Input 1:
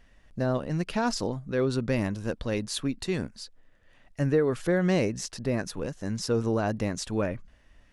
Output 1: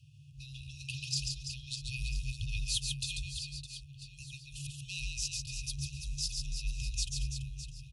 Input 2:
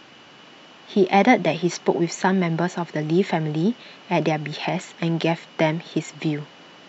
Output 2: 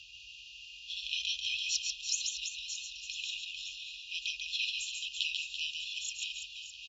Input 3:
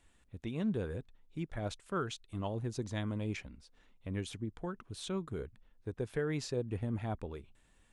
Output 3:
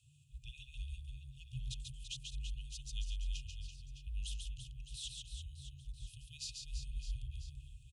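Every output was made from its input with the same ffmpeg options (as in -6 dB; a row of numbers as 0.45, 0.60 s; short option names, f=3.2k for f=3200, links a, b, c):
-af "afftfilt=real='re*(1-between(b*sr/4096,110,2600))':imag='im*(1-between(b*sr/4096,110,2600))':win_size=4096:overlap=0.75,afreqshift=-150,aecho=1:1:140|336|610.4|994.6|1532:0.631|0.398|0.251|0.158|0.1"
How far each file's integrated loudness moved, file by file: -8.5, -12.5, -7.5 LU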